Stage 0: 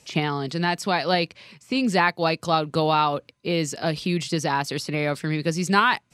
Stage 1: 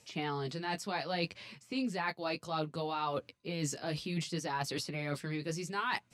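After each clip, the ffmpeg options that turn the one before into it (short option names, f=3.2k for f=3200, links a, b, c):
-af "areverse,acompressor=threshold=-29dB:ratio=6,areverse,flanger=delay=8.6:depth=7.1:regen=-17:speed=0.65:shape=triangular"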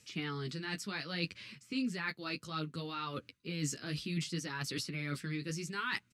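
-af "firequalizer=gain_entry='entry(280,0);entry(740,-17);entry(1300,0)':delay=0.05:min_phase=1"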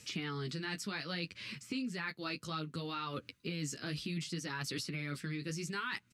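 -af "acompressor=threshold=-45dB:ratio=4,volume=7.5dB"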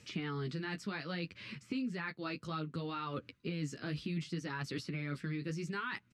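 -af "lowpass=f=1.9k:p=1,volume=1.5dB"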